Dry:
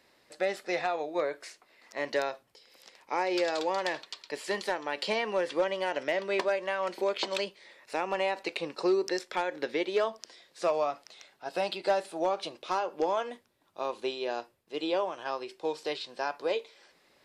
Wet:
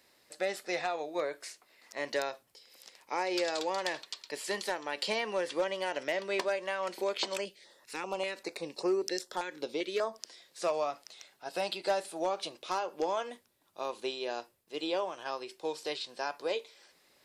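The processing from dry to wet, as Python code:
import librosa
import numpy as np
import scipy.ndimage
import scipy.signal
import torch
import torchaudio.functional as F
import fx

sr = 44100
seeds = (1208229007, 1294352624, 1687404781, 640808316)

y = fx.high_shelf(x, sr, hz=5400.0, db=11.0)
y = fx.filter_held_notch(y, sr, hz=5.1, low_hz=640.0, high_hz=3900.0, at=(7.35, 10.14), fade=0.02)
y = F.gain(torch.from_numpy(y), -3.5).numpy()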